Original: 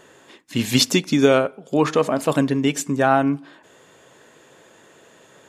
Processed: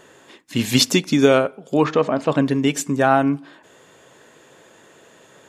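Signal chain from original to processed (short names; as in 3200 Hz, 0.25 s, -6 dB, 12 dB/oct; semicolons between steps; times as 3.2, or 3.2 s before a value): 1.84–2.46 air absorption 130 m; gain +1 dB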